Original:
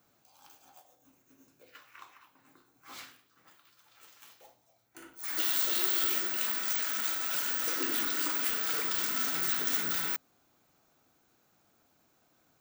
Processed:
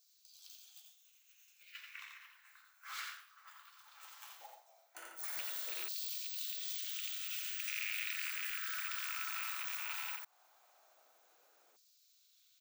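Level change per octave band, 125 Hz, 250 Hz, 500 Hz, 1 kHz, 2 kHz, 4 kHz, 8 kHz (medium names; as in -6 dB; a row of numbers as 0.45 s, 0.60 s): no reading, under -30 dB, -19.0 dB, -9.0 dB, -5.0 dB, -7.5 dB, -10.0 dB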